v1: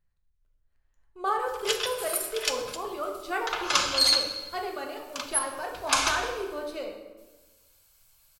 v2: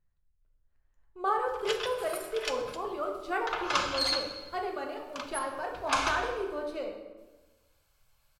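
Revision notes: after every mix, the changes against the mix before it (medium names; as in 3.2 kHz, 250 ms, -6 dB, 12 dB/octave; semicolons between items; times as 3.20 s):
background: add treble shelf 6.4 kHz -7 dB; master: add treble shelf 2.9 kHz -9 dB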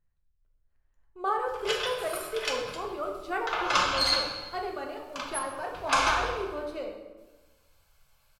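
background: send +11.0 dB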